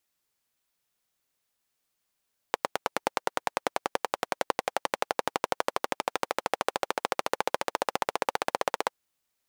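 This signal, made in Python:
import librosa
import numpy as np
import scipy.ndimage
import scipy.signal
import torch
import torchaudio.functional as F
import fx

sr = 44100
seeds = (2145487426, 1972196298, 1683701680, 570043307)

y = fx.engine_single_rev(sr, seeds[0], length_s=6.36, rpm=1100, resonances_hz=(540.0, 800.0), end_rpm=1900)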